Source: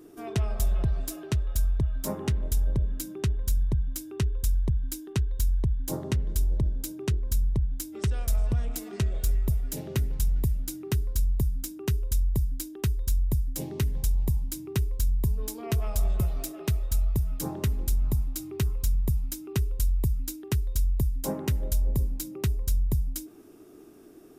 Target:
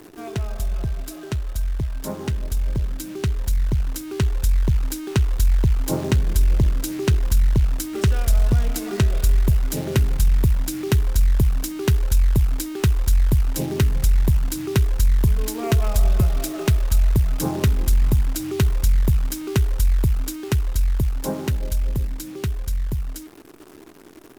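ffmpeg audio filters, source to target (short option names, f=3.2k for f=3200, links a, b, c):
-filter_complex "[0:a]highshelf=f=7.5k:g=-6,asplit=2[a][b];[b]acompressor=threshold=-38dB:ratio=6,volume=0.5dB[c];[a][c]amix=inputs=2:normalize=0,equalizer=f=1.5k:w=7.1:g=3.5,acrusher=bits=8:dc=4:mix=0:aa=0.000001,dynaudnorm=f=370:g=21:m=8dB,volume=-1dB" -ar 48000 -c:a sbc -b:a 192k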